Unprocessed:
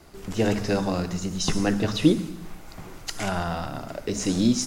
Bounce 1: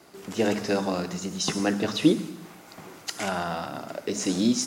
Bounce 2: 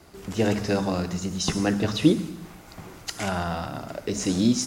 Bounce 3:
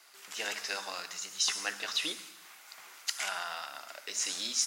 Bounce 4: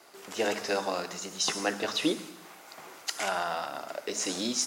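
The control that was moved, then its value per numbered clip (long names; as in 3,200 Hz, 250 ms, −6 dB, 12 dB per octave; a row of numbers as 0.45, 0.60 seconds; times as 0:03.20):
high-pass filter, corner frequency: 200, 47, 1,500, 530 Hertz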